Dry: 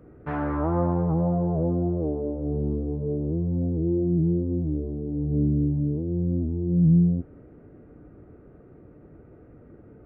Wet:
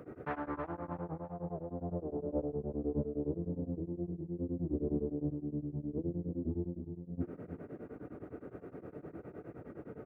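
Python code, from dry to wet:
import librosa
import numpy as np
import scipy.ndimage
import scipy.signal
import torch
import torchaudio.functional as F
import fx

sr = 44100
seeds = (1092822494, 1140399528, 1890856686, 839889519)

y = scipy.signal.sosfilt(scipy.signal.butter(2, 84.0, 'highpass', fs=sr, output='sos'), x)
y = fx.low_shelf(y, sr, hz=200.0, db=-8.0)
y = fx.hum_notches(y, sr, base_hz=50, count=7)
y = fx.over_compress(y, sr, threshold_db=-37.0, ratio=-1.0)
y = fx.echo_feedback(y, sr, ms=326, feedback_pct=33, wet_db=-9)
y = y * np.abs(np.cos(np.pi * 9.7 * np.arange(len(y)) / sr))
y = F.gain(torch.from_numpy(y), 1.0).numpy()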